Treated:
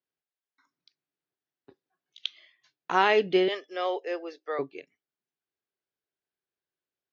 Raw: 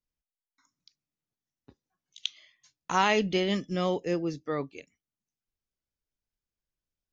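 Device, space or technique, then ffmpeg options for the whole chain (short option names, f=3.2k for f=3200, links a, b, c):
kitchen radio: -filter_complex "[0:a]asettb=1/sr,asplit=3[a][b][c];[a]atrim=end=3.484[d];[b]atrim=start=3.48:end=4.59,asetpts=PTS-STARTPTS,afade=t=in:d=0.004:c=qsin,afade=t=out:st=1.106:d=0.004:c=qsin,highpass=f=480:w=0.5412,highpass=f=480:w=1.3066[e];[c]atrim=start=4.586[f];[d][e]acrossfade=d=0.004:c1=hsin:c2=qsin[g];[g][f]acrossfade=d=0.004:c1=qsin:c2=hsin,highpass=180,equalizer=f=210:t=q:w=4:g=-7,equalizer=f=390:t=q:w=4:g=8,equalizer=f=720:t=q:w=4:g=4,equalizer=f=1.6k:t=q:w=4:g=5,lowpass=f=4.5k:w=0.5412,lowpass=f=4.5k:w=1.3066"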